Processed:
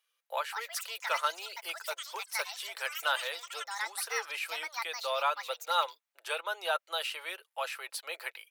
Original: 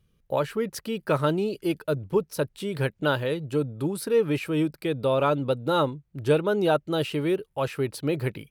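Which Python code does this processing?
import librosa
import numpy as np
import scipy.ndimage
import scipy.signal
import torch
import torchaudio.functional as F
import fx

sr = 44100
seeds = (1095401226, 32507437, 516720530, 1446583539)

y = scipy.signal.sosfilt(scipy.signal.bessel(8, 1100.0, 'highpass', norm='mag', fs=sr, output='sos'), x)
y = fx.echo_pitch(y, sr, ms=311, semitones=7, count=3, db_per_echo=-6.0)
y = y + 0.32 * np.pad(y, (int(5.9 * sr / 1000.0), 0))[:len(y)]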